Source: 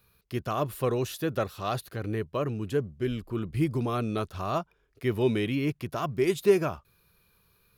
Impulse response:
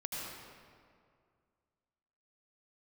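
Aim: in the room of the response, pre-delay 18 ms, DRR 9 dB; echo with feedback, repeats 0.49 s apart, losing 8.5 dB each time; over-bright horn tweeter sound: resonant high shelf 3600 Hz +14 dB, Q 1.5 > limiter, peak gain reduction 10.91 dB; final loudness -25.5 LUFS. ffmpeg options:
-filter_complex "[0:a]aecho=1:1:490|980|1470|1960:0.376|0.143|0.0543|0.0206,asplit=2[a][b];[1:a]atrim=start_sample=2205,adelay=18[c];[b][c]afir=irnorm=-1:irlink=0,volume=-11dB[d];[a][d]amix=inputs=2:normalize=0,highshelf=f=3.6k:t=q:w=1.5:g=14,volume=5dB,alimiter=limit=-15.5dB:level=0:latency=1"

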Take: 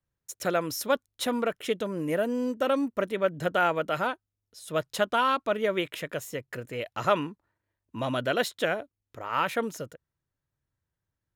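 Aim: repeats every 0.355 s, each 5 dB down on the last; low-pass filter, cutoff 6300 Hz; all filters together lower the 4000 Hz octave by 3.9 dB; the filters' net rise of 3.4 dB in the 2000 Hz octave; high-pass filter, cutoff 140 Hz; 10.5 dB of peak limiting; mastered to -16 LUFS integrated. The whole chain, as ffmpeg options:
-af "highpass=140,lowpass=6.3k,equalizer=f=2k:t=o:g=7,equalizer=f=4k:t=o:g=-9,alimiter=limit=-18.5dB:level=0:latency=1,aecho=1:1:355|710|1065|1420|1775|2130|2485:0.562|0.315|0.176|0.0988|0.0553|0.031|0.0173,volume=14.5dB"

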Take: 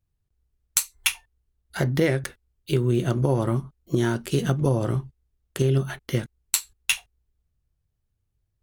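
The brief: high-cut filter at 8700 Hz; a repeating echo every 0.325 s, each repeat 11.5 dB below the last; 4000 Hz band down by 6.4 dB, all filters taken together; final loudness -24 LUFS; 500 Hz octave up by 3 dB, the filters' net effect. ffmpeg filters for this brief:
-af "lowpass=8.7k,equalizer=f=500:t=o:g=4,equalizer=f=4k:t=o:g=-9,aecho=1:1:325|650|975:0.266|0.0718|0.0194,volume=0.5dB"

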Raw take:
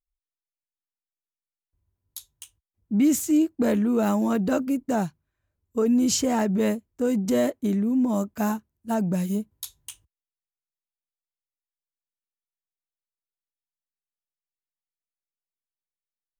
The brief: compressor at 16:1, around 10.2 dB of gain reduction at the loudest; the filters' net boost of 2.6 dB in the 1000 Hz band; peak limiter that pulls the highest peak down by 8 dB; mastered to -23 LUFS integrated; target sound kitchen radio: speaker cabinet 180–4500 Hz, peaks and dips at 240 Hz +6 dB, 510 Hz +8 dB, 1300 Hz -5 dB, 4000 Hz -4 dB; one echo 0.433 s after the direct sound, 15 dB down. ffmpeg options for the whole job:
-af "equalizer=f=1k:t=o:g=3.5,acompressor=threshold=-27dB:ratio=16,alimiter=level_in=1.5dB:limit=-24dB:level=0:latency=1,volume=-1.5dB,highpass=180,equalizer=f=240:t=q:w=4:g=6,equalizer=f=510:t=q:w=4:g=8,equalizer=f=1.3k:t=q:w=4:g=-5,equalizer=f=4k:t=q:w=4:g=-4,lowpass=f=4.5k:w=0.5412,lowpass=f=4.5k:w=1.3066,aecho=1:1:433:0.178,volume=8dB"

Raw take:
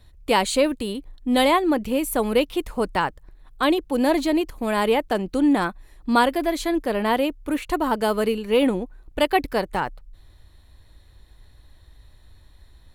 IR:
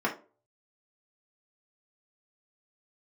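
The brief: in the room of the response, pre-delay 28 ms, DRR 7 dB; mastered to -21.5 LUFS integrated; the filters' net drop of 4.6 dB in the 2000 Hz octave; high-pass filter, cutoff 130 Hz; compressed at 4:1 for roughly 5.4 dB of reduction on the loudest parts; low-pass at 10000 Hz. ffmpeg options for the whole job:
-filter_complex "[0:a]highpass=130,lowpass=10k,equalizer=f=2k:t=o:g=-6,acompressor=threshold=-21dB:ratio=4,asplit=2[a][b];[1:a]atrim=start_sample=2205,adelay=28[c];[b][c]afir=irnorm=-1:irlink=0,volume=-17.5dB[d];[a][d]amix=inputs=2:normalize=0,volume=4.5dB"

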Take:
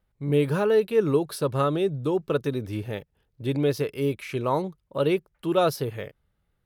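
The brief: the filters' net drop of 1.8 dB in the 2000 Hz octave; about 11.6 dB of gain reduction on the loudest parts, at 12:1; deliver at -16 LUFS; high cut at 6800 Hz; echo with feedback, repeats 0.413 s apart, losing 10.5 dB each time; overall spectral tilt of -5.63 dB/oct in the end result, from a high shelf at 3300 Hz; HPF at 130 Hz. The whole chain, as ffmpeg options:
-af "highpass=130,lowpass=6.8k,equalizer=f=2k:t=o:g=-5.5,highshelf=f=3.3k:g=8,acompressor=threshold=-28dB:ratio=12,aecho=1:1:413|826|1239:0.299|0.0896|0.0269,volume=18dB"

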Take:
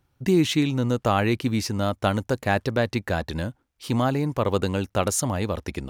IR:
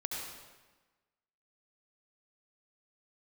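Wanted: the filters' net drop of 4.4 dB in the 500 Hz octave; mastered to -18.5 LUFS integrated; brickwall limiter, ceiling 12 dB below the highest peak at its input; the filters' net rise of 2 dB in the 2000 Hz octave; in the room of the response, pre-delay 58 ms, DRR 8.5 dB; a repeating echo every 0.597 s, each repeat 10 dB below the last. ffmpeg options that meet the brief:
-filter_complex "[0:a]equalizer=f=500:t=o:g=-6,equalizer=f=2k:t=o:g=3,alimiter=limit=-18.5dB:level=0:latency=1,aecho=1:1:597|1194|1791|2388:0.316|0.101|0.0324|0.0104,asplit=2[a][b];[1:a]atrim=start_sample=2205,adelay=58[c];[b][c]afir=irnorm=-1:irlink=0,volume=-11dB[d];[a][d]amix=inputs=2:normalize=0,volume=10dB"

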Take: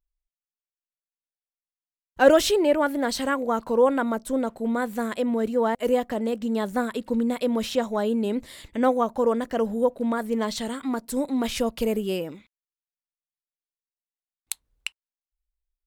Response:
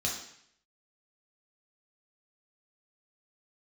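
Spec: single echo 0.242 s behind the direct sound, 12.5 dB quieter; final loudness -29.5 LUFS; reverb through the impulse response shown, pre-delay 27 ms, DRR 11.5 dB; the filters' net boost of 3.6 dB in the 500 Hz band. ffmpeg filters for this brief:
-filter_complex "[0:a]equalizer=f=500:t=o:g=4,aecho=1:1:242:0.237,asplit=2[a][b];[1:a]atrim=start_sample=2205,adelay=27[c];[b][c]afir=irnorm=-1:irlink=0,volume=-17dB[d];[a][d]amix=inputs=2:normalize=0,volume=-8dB"

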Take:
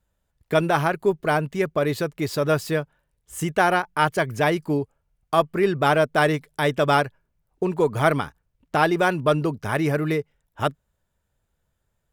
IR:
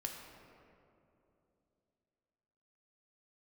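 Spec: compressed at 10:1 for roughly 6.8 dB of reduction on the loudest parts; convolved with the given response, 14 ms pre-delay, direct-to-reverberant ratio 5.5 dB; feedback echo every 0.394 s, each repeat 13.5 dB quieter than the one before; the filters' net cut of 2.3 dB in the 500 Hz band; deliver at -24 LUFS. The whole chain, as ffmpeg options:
-filter_complex "[0:a]equalizer=f=500:t=o:g=-3,acompressor=threshold=-21dB:ratio=10,aecho=1:1:394|788:0.211|0.0444,asplit=2[a][b];[1:a]atrim=start_sample=2205,adelay=14[c];[b][c]afir=irnorm=-1:irlink=0,volume=-4.5dB[d];[a][d]amix=inputs=2:normalize=0,volume=2.5dB"

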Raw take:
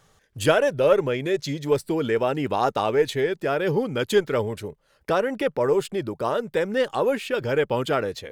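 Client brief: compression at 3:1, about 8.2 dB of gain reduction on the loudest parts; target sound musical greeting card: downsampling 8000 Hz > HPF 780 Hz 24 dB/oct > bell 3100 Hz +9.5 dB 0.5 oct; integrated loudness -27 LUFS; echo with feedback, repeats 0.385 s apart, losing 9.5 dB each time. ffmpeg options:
-af "acompressor=threshold=-25dB:ratio=3,aecho=1:1:385|770|1155|1540:0.335|0.111|0.0365|0.012,aresample=8000,aresample=44100,highpass=f=780:w=0.5412,highpass=f=780:w=1.3066,equalizer=f=3.1k:t=o:w=0.5:g=9.5,volume=5.5dB"

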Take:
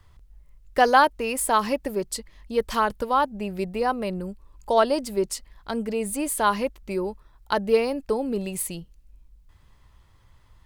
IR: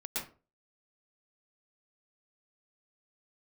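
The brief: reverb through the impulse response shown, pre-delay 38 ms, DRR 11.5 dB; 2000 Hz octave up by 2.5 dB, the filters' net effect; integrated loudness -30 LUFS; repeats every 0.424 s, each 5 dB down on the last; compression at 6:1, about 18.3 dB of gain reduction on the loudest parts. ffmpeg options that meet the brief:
-filter_complex "[0:a]equalizer=f=2k:t=o:g=3.5,acompressor=threshold=-32dB:ratio=6,aecho=1:1:424|848|1272|1696|2120|2544|2968:0.562|0.315|0.176|0.0988|0.0553|0.031|0.0173,asplit=2[a][b];[1:a]atrim=start_sample=2205,adelay=38[c];[b][c]afir=irnorm=-1:irlink=0,volume=-14dB[d];[a][d]amix=inputs=2:normalize=0,volume=4.5dB"

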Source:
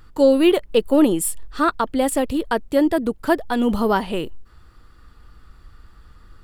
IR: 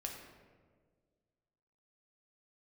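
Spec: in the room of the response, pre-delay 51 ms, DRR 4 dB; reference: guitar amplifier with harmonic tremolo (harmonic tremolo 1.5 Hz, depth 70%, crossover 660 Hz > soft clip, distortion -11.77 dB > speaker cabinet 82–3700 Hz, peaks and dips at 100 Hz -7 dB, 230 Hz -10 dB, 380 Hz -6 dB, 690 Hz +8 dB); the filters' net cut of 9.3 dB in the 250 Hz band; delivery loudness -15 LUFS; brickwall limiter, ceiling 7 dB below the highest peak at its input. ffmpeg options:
-filter_complex "[0:a]equalizer=f=250:t=o:g=-6.5,alimiter=limit=-13dB:level=0:latency=1,asplit=2[a][b];[1:a]atrim=start_sample=2205,adelay=51[c];[b][c]afir=irnorm=-1:irlink=0,volume=-3dB[d];[a][d]amix=inputs=2:normalize=0,acrossover=split=660[e][f];[e]aeval=exprs='val(0)*(1-0.7/2+0.7/2*cos(2*PI*1.5*n/s))':c=same[g];[f]aeval=exprs='val(0)*(1-0.7/2-0.7/2*cos(2*PI*1.5*n/s))':c=same[h];[g][h]amix=inputs=2:normalize=0,asoftclip=threshold=-23dB,highpass=82,equalizer=f=100:t=q:w=4:g=-7,equalizer=f=230:t=q:w=4:g=-10,equalizer=f=380:t=q:w=4:g=-6,equalizer=f=690:t=q:w=4:g=8,lowpass=f=3.7k:w=0.5412,lowpass=f=3.7k:w=1.3066,volume=15dB"

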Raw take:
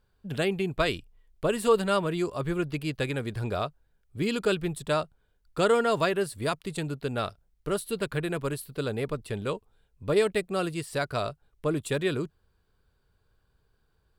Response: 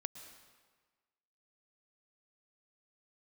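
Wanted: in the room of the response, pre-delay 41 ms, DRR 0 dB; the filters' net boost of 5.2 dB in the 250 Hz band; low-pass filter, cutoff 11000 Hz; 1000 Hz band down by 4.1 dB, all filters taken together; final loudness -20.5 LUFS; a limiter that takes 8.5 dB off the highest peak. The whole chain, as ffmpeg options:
-filter_complex "[0:a]lowpass=11k,equalizer=f=250:t=o:g=8,equalizer=f=1k:t=o:g=-6.5,alimiter=limit=-18.5dB:level=0:latency=1,asplit=2[a][b];[1:a]atrim=start_sample=2205,adelay=41[c];[b][c]afir=irnorm=-1:irlink=0,volume=2dB[d];[a][d]amix=inputs=2:normalize=0,volume=6.5dB"

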